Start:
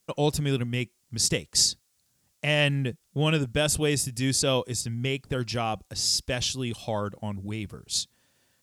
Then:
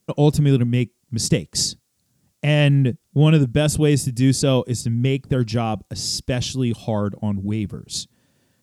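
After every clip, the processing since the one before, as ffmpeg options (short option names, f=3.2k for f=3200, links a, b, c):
-af "equalizer=f=180:t=o:w=2.9:g=12"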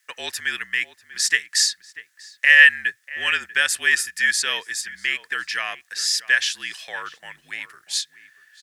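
-filter_complex "[0:a]highpass=f=1.8k:t=q:w=13,afreqshift=-47,asplit=2[a][b];[b]adelay=641.4,volume=-16dB,highshelf=f=4k:g=-14.4[c];[a][c]amix=inputs=2:normalize=0,volume=2dB"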